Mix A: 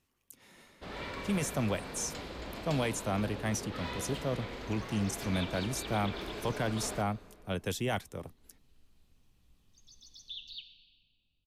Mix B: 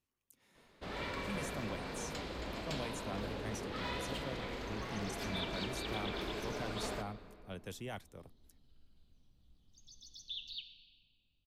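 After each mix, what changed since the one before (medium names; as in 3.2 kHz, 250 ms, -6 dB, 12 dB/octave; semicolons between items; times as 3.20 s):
speech -11.5 dB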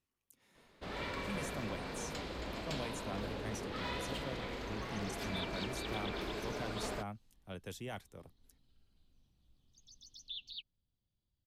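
second sound: send off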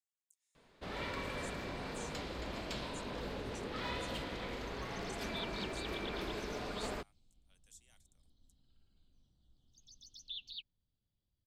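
speech: add band-pass filter 7.7 kHz, Q 3.5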